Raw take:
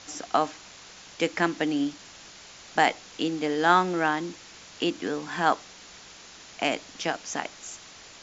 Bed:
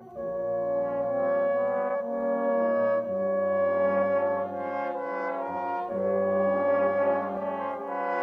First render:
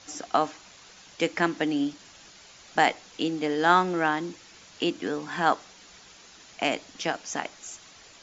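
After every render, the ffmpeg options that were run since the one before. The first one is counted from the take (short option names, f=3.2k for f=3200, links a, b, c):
-af "afftdn=nr=6:nf=-48"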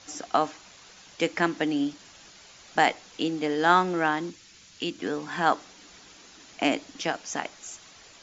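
-filter_complex "[0:a]asettb=1/sr,asplit=3[a][b][c];[a]atrim=end=4.304[d];[b]atrim=start=4.3:end=4.99,asetpts=PTS-STARTPTS,afade=t=in:d=0.004:c=qsin,afade=t=out:st=0.686:d=0.004:c=qsin,equalizer=f=710:t=o:w=2.4:g=-10[e];[c]atrim=start=4.986[f];[d][e]acrossfade=d=0.004:c1=hsin:c2=qsin[g];[g][f]acrossfade=d=0.004:c1=qsin:c2=hsin,asettb=1/sr,asplit=3[h][i][j];[h]atrim=end=5.544[k];[i]atrim=start=5.54:end=7.01,asetpts=PTS-STARTPTS,afade=t=in:d=0.004:c=qsin,afade=t=out:st=1.466:d=0.004:c=qsin,equalizer=f=290:t=o:w=0.52:g=7.5[l];[j]atrim=start=7.006[m];[k][l]acrossfade=d=0.004:c1=hsin:c2=qsin[n];[n][m]acrossfade=d=0.004:c1=qsin:c2=hsin"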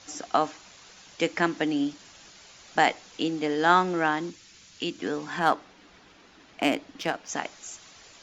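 -filter_complex "[0:a]asettb=1/sr,asplit=3[a][b][c];[a]atrim=end=5.394[d];[b]atrim=start=5.39:end=7.29,asetpts=PTS-STARTPTS,afade=t=in:d=0.004:c=qsin,afade=t=out:st=1.896:d=0.004:c=qsin,adynamicsmooth=sensitivity=4.5:basefreq=3.3k[e];[c]atrim=start=7.286[f];[d][e]acrossfade=d=0.004:c1=hsin:c2=qsin[g];[g][f]acrossfade=d=0.004:c1=qsin:c2=hsin"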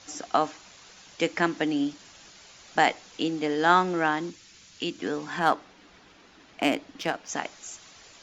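-af anull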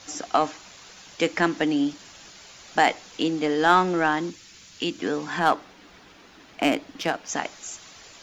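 -filter_complex "[0:a]asplit=2[a][b];[b]asoftclip=type=tanh:threshold=-21.5dB,volume=-4.5dB[c];[a][c]amix=inputs=2:normalize=0,acrusher=bits=11:mix=0:aa=0.000001"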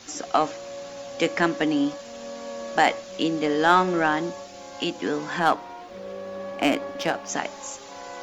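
-filter_complex "[1:a]volume=-10dB[a];[0:a][a]amix=inputs=2:normalize=0"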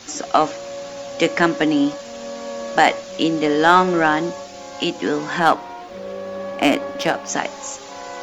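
-af "volume=5.5dB,alimiter=limit=-1dB:level=0:latency=1"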